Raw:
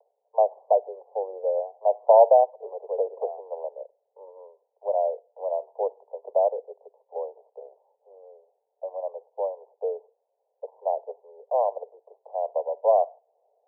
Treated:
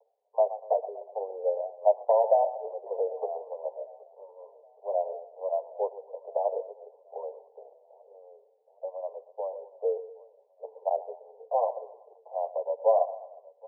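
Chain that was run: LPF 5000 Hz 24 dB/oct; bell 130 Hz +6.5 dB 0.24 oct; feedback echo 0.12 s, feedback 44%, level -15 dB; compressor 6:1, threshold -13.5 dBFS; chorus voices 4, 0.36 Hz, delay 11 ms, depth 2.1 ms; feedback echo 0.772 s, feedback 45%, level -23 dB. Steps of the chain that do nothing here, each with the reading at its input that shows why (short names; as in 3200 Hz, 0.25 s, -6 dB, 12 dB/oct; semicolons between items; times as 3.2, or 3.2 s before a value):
LPF 5000 Hz: input band ends at 1000 Hz; bell 130 Hz: input band starts at 360 Hz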